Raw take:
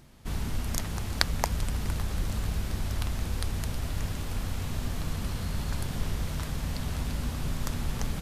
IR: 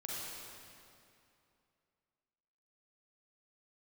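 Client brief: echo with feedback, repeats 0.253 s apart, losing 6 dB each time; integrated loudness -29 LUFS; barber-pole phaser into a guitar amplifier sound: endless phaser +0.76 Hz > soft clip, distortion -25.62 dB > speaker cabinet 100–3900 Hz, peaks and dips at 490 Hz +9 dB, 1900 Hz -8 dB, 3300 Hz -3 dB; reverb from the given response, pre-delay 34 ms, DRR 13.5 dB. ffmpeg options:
-filter_complex "[0:a]aecho=1:1:253|506|759|1012|1265|1518:0.501|0.251|0.125|0.0626|0.0313|0.0157,asplit=2[a][b];[1:a]atrim=start_sample=2205,adelay=34[c];[b][c]afir=irnorm=-1:irlink=0,volume=-14.5dB[d];[a][d]amix=inputs=2:normalize=0,asplit=2[e][f];[f]afreqshift=0.76[g];[e][g]amix=inputs=2:normalize=1,asoftclip=threshold=-15.5dB,highpass=100,equalizer=f=490:t=q:w=4:g=9,equalizer=f=1.9k:t=q:w=4:g=-8,equalizer=f=3.3k:t=q:w=4:g=-3,lowpass=f=3.9k:w=0.5412,lowpass=f=3.9k:w=1.3066,volume=8.5dB"

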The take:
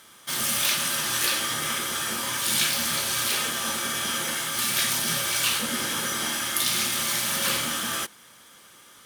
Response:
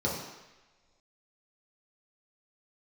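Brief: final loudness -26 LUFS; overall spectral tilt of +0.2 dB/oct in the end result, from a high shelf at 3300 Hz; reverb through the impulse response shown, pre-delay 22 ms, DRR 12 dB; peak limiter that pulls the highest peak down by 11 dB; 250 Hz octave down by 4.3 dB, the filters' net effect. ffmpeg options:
-filter_complex "[0:a]equalizer=f=250:t=o:g=-5.5,highshelf=f=3.3k:g=5.5,alimiter=limit=-11.5dB:level=0:latency=1,asplit=2[a][b];[1:a]atrim=start_sample=2205,adelay=22[c];[b][c]afir=irnorm=-1:irlink=0,volume=-21dB[d];[a][d]amix=inputs=2:normalize=0,volume=-5dB"

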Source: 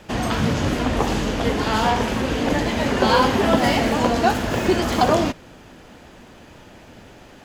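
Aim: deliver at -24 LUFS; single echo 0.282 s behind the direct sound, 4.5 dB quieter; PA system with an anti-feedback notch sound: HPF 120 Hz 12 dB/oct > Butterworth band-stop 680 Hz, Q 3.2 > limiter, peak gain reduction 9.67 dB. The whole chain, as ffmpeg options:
-af "highpass=120,asuperstop=centerf=680:order=8:qfactor=3.2,aecho=1:1:282:0.596,volume=-0.5dB,alimiter=limit=-15dB:level=0:latency=1"

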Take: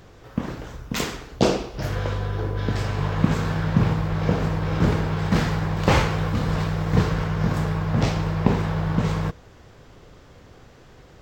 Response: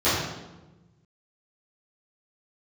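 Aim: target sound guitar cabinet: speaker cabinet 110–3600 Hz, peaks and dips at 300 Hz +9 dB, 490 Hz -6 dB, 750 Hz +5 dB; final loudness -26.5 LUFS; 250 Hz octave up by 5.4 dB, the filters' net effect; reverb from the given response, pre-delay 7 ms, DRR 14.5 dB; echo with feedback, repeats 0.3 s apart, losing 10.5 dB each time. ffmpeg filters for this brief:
-filter_complex "[0:a]equalizer=f=250:t=o:g=5,aecho=1:1:300|600|900:0.299|0.0896|0.0269,asplit=2[a][b];[1:a]atrim=start_sample=2205,adelay=7[c];[b][c]afir=irnorm=-1:irlink=0,volume=-32.5dB[d];[a][d]amix=inputs=2:normalize=0,highpass=110,equalizer=f=300:t=q:w=4:g=9,equalizer=f=490:t=q:w=4:g=-6,equalizer=f=750:t=q:w=4:g=5,lowpass=f=3.6k:w=0.5412,lowpass=f=3.6k:w=1.3066,volume=-6.5dB"

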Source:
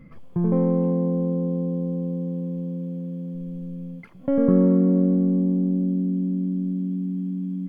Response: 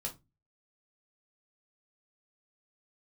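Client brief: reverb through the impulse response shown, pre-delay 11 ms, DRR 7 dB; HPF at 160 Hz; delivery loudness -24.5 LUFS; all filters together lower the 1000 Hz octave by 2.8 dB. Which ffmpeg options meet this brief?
-filter_complex "[0:a]highpass=160,equalizer=f=1k:t=o:g=-3.5,asplit=2[a][b];[1:a]atrim=start_sample=2205,adelay=11[c];[b][c]afir=irnorm=-1:irlink=0,volume=-7dB[d];[a][d]amix=inputs=2:normalize=0,volume=-2.5dB"

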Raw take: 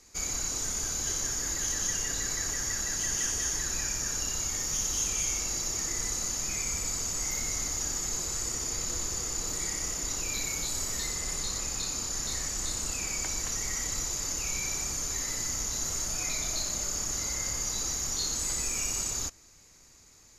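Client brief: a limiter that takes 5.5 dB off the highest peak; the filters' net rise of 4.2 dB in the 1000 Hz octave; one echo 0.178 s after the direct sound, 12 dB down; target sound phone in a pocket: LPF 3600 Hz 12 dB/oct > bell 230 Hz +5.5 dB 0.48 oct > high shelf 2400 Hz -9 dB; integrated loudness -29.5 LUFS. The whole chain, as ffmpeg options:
-af "equalizer=f=1k:t=o:g=7,alimiter=limit=-22.5dB:level=0:latency=1,lowpass=3.6k,equalizer=f=230:t=o:w=0.48:g=5.5,highshelf=f=2.4k:g=-9,aecho=1:1:178:0.251,volume=11.5dB"

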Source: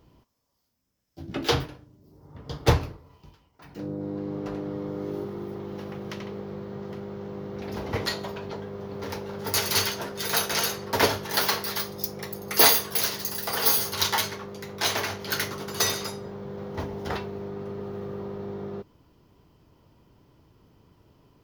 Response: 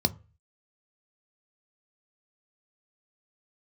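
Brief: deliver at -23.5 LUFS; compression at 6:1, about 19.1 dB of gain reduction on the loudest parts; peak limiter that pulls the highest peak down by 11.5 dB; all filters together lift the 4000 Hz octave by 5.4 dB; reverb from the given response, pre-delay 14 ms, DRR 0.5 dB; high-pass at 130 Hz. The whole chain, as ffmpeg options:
-filter_complex "[0:a]highpass=130,equalizer=f=4k:t=o:g=6.5,acompressor=threshold=-32dB:ratio=6,alimiter=level_in=2.5dB:limit=-24dB:level=0:latency=1,volume=-2.5dB,asplit=2[a][b];[1:a]atrim=start_sample=2205,adelay=14[c];[b][c]afir=irnorm=-1:irlink=0,volume=-9dB[d];[a][d]amix=inputs=2:normalize=0,volume=8dB"

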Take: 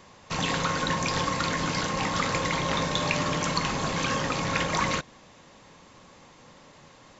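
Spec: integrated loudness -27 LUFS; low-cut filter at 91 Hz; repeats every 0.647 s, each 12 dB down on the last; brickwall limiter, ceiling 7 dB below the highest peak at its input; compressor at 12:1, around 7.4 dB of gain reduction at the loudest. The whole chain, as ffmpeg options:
-af "highpass=91,acompressor=threshold=-29dB:ratio=12,alimiter=limit=-24dB:level=0:latency=1,aecho=1:1:647|1294|1941:0.251|0.0628|0.0157,volume=7dB"

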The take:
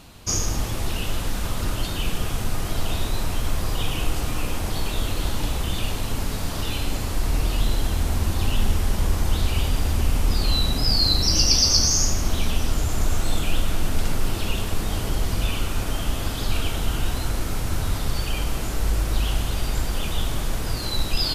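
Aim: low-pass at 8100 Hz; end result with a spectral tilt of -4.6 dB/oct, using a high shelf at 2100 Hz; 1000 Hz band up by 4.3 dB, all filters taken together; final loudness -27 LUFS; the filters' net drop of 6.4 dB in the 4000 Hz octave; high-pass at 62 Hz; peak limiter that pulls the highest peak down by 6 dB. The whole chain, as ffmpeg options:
-af "highpass=62,lowpass=8.1k,equalizer=f=1k:t=o:g=6.5,highshelf=f=2.1k:g=-4,equalizer=f=4k:t=o:g=-4,volume=2dB,alimiter=limit=-15dB:level=0:latency=1"

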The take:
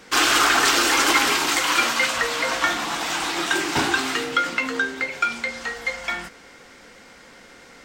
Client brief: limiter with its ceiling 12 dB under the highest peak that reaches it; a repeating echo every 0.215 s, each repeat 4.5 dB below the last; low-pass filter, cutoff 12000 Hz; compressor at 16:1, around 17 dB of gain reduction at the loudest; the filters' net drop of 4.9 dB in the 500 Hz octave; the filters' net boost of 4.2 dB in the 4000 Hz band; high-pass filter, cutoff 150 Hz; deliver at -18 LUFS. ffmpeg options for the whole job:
-af "highpass=150,lowpass=12k,equalizer=f=500:t=o:g=-6.5,equalizer=f=4k:t=o:g=5.5,acompressor=threshold=-30dB:ratio=16,alimiter=level_in=3dB:limit=-24dB:level=0:latency=1,volume=-3dB,aecho=1:1:215|430|645|860|1075|1290|1505|1720|1935:0.596|0.357|0.214|0.129|0.0772|0.0463|0.0278|0.0167|0.01,volume=16dB"

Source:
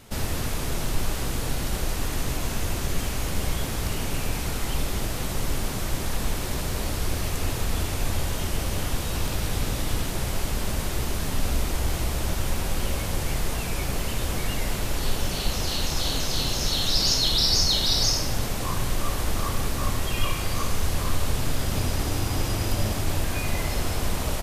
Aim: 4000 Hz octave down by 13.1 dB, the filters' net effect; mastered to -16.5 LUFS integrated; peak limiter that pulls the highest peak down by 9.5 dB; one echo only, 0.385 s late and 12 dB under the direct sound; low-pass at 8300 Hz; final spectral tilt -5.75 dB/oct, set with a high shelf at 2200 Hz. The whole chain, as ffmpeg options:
-af "lowpass=8.3k,highshelf=f=2.2k:g=-8,equalizer=f=4k:t=o:g=-8.5,alimiter=limit=-21.5dB:level=0:latency=1,aecho=1:1:385:0.251,volume=17dB"

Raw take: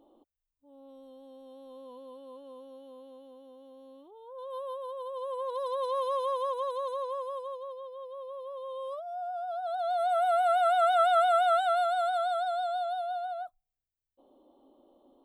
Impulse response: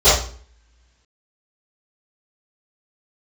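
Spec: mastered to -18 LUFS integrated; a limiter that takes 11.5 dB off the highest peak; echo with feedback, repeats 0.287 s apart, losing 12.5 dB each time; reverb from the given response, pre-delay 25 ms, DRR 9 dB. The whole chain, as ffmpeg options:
-filter_complex "[0:a]alimiter=level_in=3dB:limit=-24dB:level=0:latency=1,volume=-3dB,aecho=1:1:287|574|861:0.237|0.0569|0.0137,asplit=2[a][b];[1:a]atrim=start_sample=2205,adelay=25[c];[b][c]afir=irnorm=-1:irlink=0,volume=-35dB[d];[a][d]amix=inputs=2:normalize=0,volume=15.5dB"

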